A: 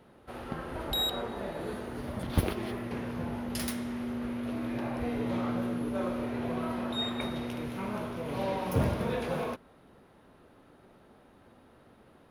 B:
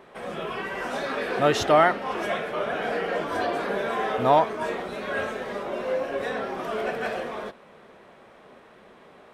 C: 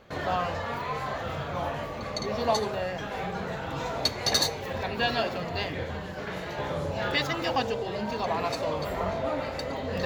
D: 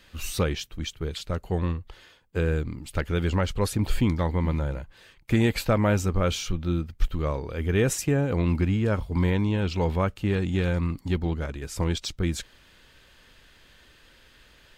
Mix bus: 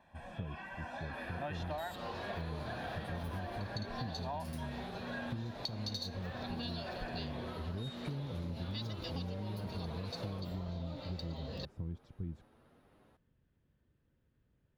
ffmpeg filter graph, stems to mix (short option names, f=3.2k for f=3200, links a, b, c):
-filter_complex "[0:a]asoftclip=type=tanh:threshold=-30.5dB,asplit=2[a][b];[b]adelay=8.1,afreqshift=1.5[c];[a][c]amix=inputs=2:normalize=1,adelay=850,volume=-5dB[d];[1:a]acrossover=split=4600[e][f];[f]acompressor=threshold=-58dB:ratio=4:attack=1:release=60[g];[e][g]amix=inputs=2:normalize=0,aecho=1:1:1.2:0.98,volume=-17dB[h];[2:a]acrossover=split=350|3000[i][j][k];[j]acompressor=threshold=-34dB:ratio=6[l];[i][l][k]amix=inputs=3:normalize=0,equalizer=f=2k:t=o:w=1:g=-7,equalizer=f=4k:t=o:w=1:g=12,equalizer=f=8k:t=o:w=1:g=-7,adelay=1600,volume=-11.5dB[m];[3:a]bandpass=f=130:t=q:w=1.2:csg=0,volume=-8dB[n];[d][h][m][n]amix=inputs=4:normalize=0,acompressor=threshold=-36dB:ratio=12"